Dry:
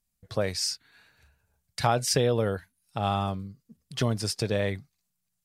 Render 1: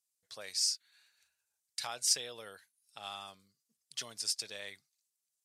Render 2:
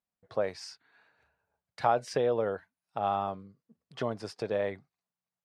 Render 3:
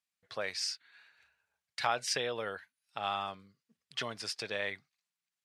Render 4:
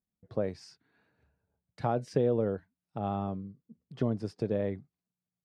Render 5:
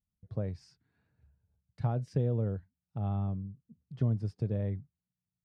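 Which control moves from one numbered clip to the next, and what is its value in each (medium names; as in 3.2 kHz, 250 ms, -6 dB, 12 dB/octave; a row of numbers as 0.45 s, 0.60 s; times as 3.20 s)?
band-pass filter, frequency: 7.4 kHz, 740 Hz, 2.2 kHz, 290 Hz, 110 Hz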